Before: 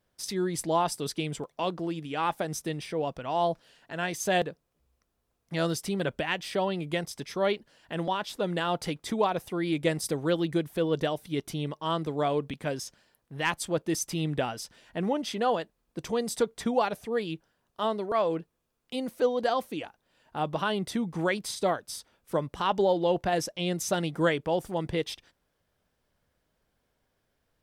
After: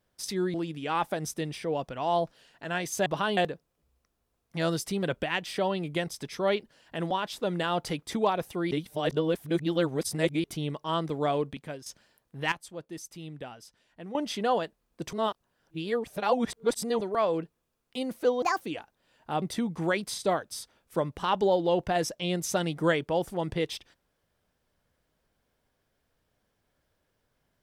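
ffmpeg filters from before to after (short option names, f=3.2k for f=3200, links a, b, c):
-filter_complex "[0:a]asplit=14[a][b][c][d][e][f][g][h][i][j][k][l][m][n];[a]atrim=end=0.542[o];[b]atrim=start=1.818:end=4.342[p];[c]atrim=start=20.478:end=20.792[q];[d]atrim=start=4.338:end=9.682[r];[e]atrim=start=9.678:end=11.412,asetpts=PTS-STARTPTS,areverse[s];[f]atrim=start=11.408:end=12.83,asetpts=PTS-STARTPTS,afade=t=out:st=0.922:d=0.5:silence=0.199526[t];[g]atrim=start=12.83:end=13.492,asetpts=PTS-STARTPTS,afade=t=in:d=0.004:c=hsin:silence=0.199526[u];[h]atrim=start=13.488:end=15.122,asetpts=PTS-STARTPTS,volume=-12dB[v];[i]atrim=start=15.118:end=16.102[w];[j]atrim=start=16.098:end=17.982,asetpts=PTS-STARTPTS,areverse[x];[k]atrim=start=17.978:end=19.394[y];[l]atrim=start=19.39:end=19.67,asetpts=PTS-STARTPTS,asetrate=65268,aresample=44100,atrim=end_sample=8343,asetpts=PTS-STARTPTS[z];[m]atrim=start=19.666:end=20.482[aa];[n]atrim=start=20.788[ab];[o][p]acrossfade=d=0.004:c1=hsin:c2=hsin[ac];[ac][q]acrossfade=d=0.004:c1=hsin:c2=hsin[ad];[ad][r]acrossfade=d=0.004:c1=hsin:c2=hsin[ae];[ae][s]acrossfade=d=0.004:c1=hsin:c2=hsin[af];[t][u]concat=n=2:v=0:a=1[ag];[af][ag]acrossfade=d=0.004:c1=hsin:c2=hsin[ah];[ah][v]acrossfade=d=0.004:c1=hsin:c2=hsin[ai];[ai][w]acrossfade=d=0.004:c1=hsin:c2=hsin[aj];[aj][x]acrossfade=d=0.004:c1=hsin:c2=hsin[ak];[ak][y]acrossfade=d=0.004:c1=hsin:c2=hsin[al];[al][z]acrossfade=d=0.004:c1=hsin:c2=hsin[am];[am][aa]acrossfade=d=0.004:c1=hsin:c2=hsin[an];[an][ab]acrossfade=d=0.004:c1=hsin:c2=hsin"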